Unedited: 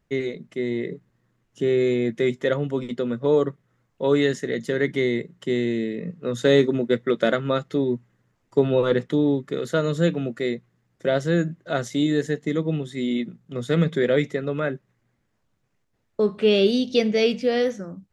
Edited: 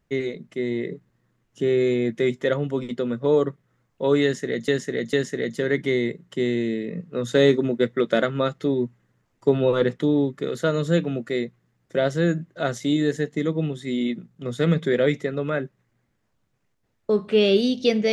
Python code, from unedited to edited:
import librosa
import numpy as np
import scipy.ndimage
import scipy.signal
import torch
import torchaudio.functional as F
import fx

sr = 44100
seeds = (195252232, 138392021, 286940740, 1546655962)

y = fx.edit(x, sr, fx.repeat(start_s=4.23, length_s=0.45, count=3), tone=tone)